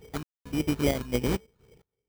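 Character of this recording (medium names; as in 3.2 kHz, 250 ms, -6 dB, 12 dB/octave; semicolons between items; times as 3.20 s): a buzz of ramps at a fixed pitch in blocks of 16 samples; random-step tremolo 4.4 Hz, depth 100%; phasing stages 12, 3.6 Hz, lowest notch 550–1500 Hz; aliases and images of a low sample rate 2.7 kHz, jitter 0%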